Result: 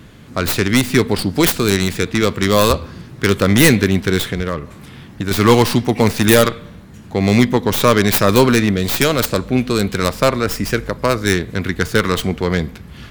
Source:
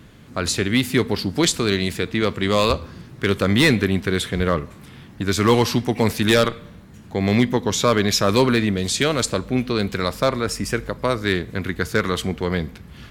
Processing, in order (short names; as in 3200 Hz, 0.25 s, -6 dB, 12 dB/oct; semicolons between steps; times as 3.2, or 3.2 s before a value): tracing distortion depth 0.3 ms; 4.25–5.31 compressor 4:1, threshold -23 dBFS, peak gain reduction 7.5 dB; gain +5 dB